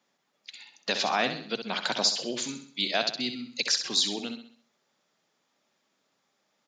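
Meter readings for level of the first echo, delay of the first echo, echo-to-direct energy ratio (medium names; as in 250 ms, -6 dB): -8.5 dB, 65 ms, -7.5 dB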